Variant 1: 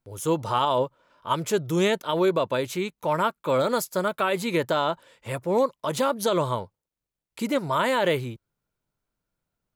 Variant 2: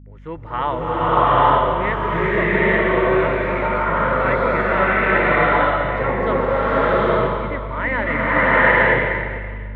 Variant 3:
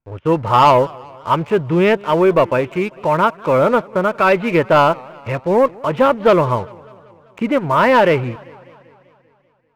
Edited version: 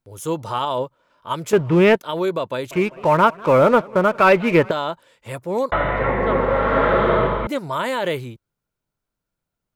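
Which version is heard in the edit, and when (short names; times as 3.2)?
1
1.53–1.96 from 3
2.71–4.71 from 3
5.72–7.47 from 2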